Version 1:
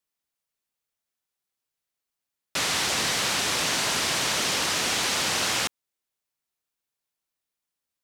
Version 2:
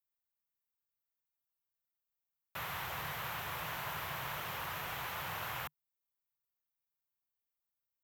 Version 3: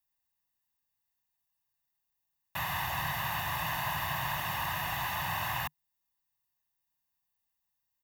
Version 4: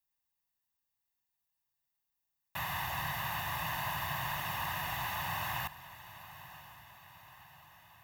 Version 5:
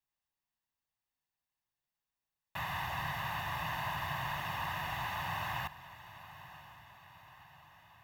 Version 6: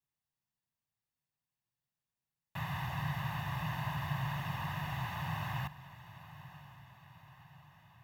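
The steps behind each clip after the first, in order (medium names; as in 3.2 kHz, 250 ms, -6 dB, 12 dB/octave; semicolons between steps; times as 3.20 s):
FFT filter 150 Hz 0 dB, 230 Hz -18 dB, 1 kHz -2 dB, 1.5 kHz -5 dB, 3.2 kHz -12 dB, 4.8 kHz -22 dB, 9.4 kHz -20 dB, 14 kHz +6 dB; trim -6.5 dB
comb 1.1 ms, depth 79%; trim +4.5 dB
echo that smears into a reverb 1004 ms, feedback 56%, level -15.5 dB; trim -3 dB
treble shelf 6.8 kHz -12 dB
peaking EQ 140 Hz +13 dB 1.3 oct; trim -4 dB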